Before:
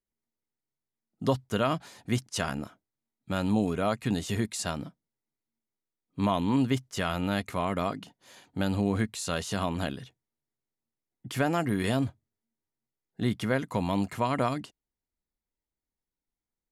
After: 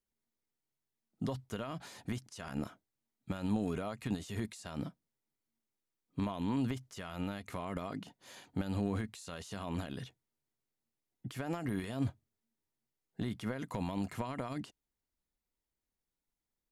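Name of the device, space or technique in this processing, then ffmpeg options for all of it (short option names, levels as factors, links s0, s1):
de-esser from a sidechain: -filter_complex "[0:a]asplit=2[s0][s1];[s1]highpass=f=5200:p=1,apad=whole_len=736945[s2];[s0][s2]sidechaincompress=threshold=0.00316:ratio=8:attack=2.2:release=58"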